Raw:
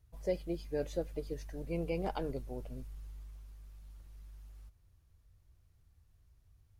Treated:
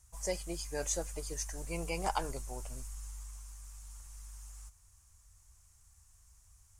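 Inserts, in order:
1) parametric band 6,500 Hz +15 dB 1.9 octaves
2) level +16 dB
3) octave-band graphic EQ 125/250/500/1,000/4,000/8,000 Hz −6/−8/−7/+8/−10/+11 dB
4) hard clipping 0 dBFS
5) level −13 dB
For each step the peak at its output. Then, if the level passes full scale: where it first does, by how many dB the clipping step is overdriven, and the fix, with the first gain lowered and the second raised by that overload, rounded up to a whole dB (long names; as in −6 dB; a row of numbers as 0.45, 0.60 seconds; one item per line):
−20.5, −4.5, −5.5, −5.5, −18.5 dBFS
no step passes full scale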